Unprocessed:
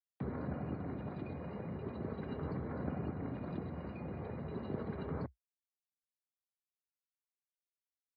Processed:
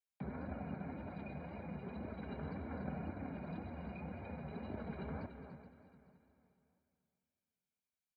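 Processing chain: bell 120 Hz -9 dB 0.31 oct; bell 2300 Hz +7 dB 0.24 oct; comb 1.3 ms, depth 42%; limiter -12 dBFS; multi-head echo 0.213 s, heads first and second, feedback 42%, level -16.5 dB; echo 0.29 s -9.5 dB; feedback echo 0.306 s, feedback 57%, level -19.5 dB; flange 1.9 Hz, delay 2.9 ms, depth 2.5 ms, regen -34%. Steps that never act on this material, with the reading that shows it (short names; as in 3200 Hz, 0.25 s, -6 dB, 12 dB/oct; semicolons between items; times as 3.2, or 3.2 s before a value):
limiter -12 dBFS: input peak -26.5 dBFS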